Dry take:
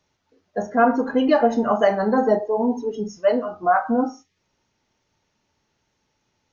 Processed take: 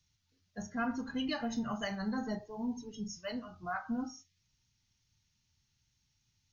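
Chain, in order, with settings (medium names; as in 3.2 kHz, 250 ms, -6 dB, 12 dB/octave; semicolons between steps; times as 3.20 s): FFT filter 120 Hz 0 dB, 480 Hz -27 dB, 4.3 kHz -2 dB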